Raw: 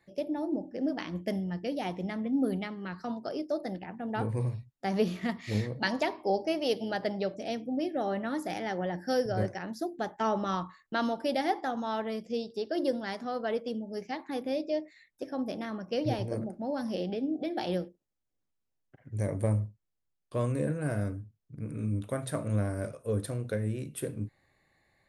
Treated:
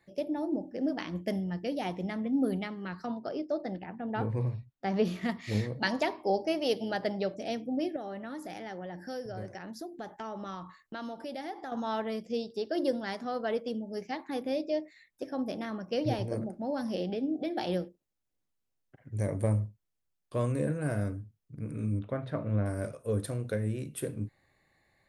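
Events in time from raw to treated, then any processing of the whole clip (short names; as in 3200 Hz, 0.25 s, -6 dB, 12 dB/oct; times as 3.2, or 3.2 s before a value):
3.06–5.05 air absorption 120 m
7.96–11.72 compressor 2.5:1, threshold -40 dBFS
21.99–22.66 air absorption 300 m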